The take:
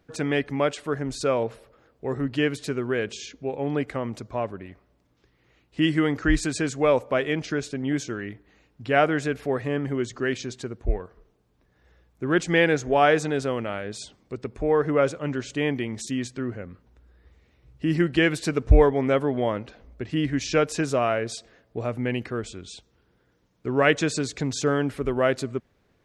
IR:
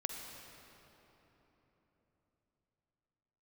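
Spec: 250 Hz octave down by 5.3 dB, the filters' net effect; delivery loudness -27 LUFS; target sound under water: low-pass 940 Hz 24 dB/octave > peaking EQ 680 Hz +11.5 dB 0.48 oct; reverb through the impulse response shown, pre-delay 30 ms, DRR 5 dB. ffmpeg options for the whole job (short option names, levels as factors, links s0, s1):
-filter_complex "[0:a]equalizer=f=250:t=o:g=-8,asplit=2[s0][s1];[1:a]atrim=start_sample=2205,adelay=30[s2];[s1][s2]afir=irnorm=-1:irlink=0,volume=0.501[s3];[s0][s3]amix=inputs=2:normalize=0,lowpass=f=940:w=0.5412,lowpass=f=940:w=1.3066,equalizer=f=680:t=o:w=0.48:g=11.5,volume=0.631"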